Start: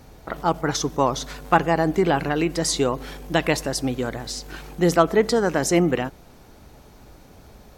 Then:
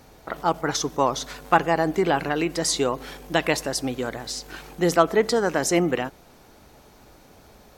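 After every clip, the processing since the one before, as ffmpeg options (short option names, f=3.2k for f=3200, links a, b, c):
-af "lowshelf=f=210:g=-8"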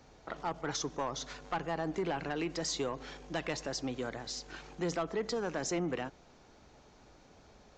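-filter_complex "[0:a]acrossover=split=180[a][b];[b]acompressor=threshold=-23dB:ratio=2[c];[a][c]amix=inputs=2:normalize=0,aresample=16000,asoftclip=type=tanh:threshold=-18dB,aresample=44100,volume=-8dB"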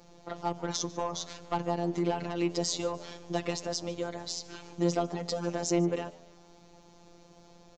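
-filter_complex "[0:a]equalizer=f=1.7k:t=o:w=1.2:g=-8,afftfilt=real='hypot(re,im)*cos(PI*b)':imag='0':win_size=1024:overlap=0.75,asplit=4[a][b][c][d];[b]adelay=148,afreqshift=85,volume=-21.5dB[e];[c]adelay=296,afreqshift=170,volume=-30.1dB[f];[d]adelay=444,afreqshift=255,volume=-38.8dB[g];[a][e][f][g]amix=inputs=4:normalize=0,volume=8dB"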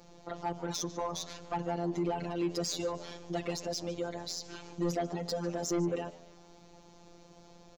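-af "asoftclip=type=tanh:threshold=-24.5dB"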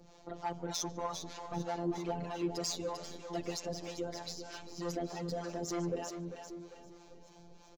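-filter_complex "[0:a]aecho=1:1:396|792|1188|1584|1980|2376:0.355|0.174|0.0852|0.0417|0.0205|0.01,aphaser=in_gain=1:out_gain=1:delay=3.7:decay=0.21:speed=1.9:type=triangular,acrossover=split=550[a][b];[a]aeval=exprs='val(0)*(1-0.7/2+0.7/2*cos(2*PI*3.2*n/s))':c=same[c];[b]aeval=exprs='val(0)*(1-0.7/2-0.7/2*cos(2*PI*3.2*n/s))':c=same[d];[c][d]amix=inputs=2:normalize=0"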